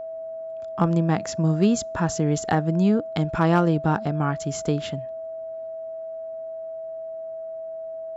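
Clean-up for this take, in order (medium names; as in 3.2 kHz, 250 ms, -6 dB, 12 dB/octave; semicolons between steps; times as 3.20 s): clip repair -10.5 dBFS; band-stop 650 Hz, Q 30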